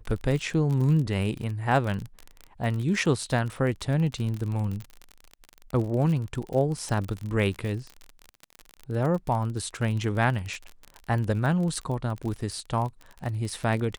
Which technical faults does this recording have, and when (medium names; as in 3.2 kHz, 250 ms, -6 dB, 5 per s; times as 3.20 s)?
crackle 37 per s -30 dBFS